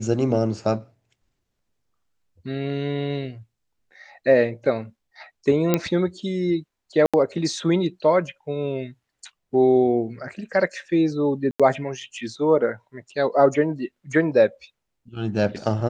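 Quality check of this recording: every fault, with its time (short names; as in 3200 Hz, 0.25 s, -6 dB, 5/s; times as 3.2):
5.74 pop -5 dBFS
7.06–7.14 gap 76 ms
11.51–11.6 gap 86 ms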